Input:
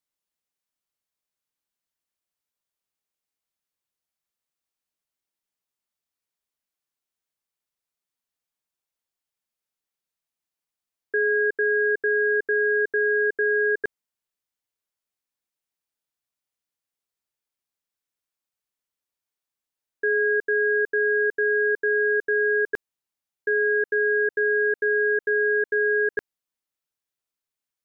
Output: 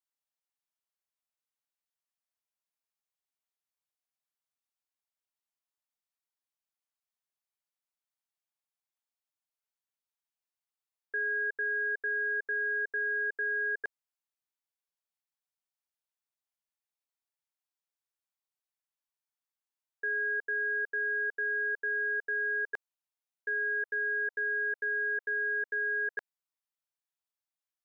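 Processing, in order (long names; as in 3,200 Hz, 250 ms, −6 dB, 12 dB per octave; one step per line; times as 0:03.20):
low shelf with overshoot 500 Hz −11.5 dB, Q 1.5
level −8 dB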